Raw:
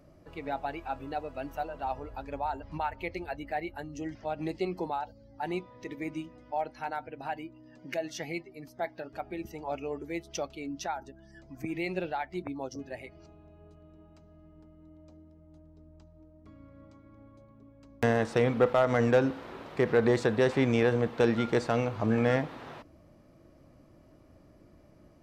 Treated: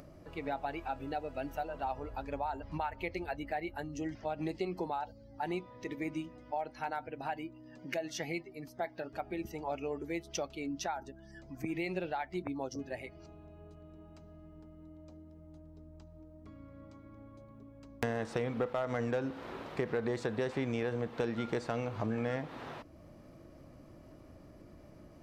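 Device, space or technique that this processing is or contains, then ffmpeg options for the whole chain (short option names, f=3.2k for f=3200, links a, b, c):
upward and downward compression: -filter_complex "[0:a]acompressor=mode=upward:threshold=-48dB:ratio=2.5,acompressor=threshold=-32dB:ratio=4,asettb=1/sr,asplit=3[a][b][c];[a]atrim=end=0.884[d];[b]atrim=start=0.88:end=1.7,asetpts=PTS-STARTPTS,afade=t=in:d=0.004:c=qsin,afade=t=out:st=0.816:d=0.004:c=qsin,bandreject=f=1.1k:w=5.4[e];[c]atrim=start=1.696[f];[d][e]acrossfade=d=0.004:c1=hsin:c2=qsin[g];[g][f]acrossfade=d=0.004:c1=qsin:c2=hsin"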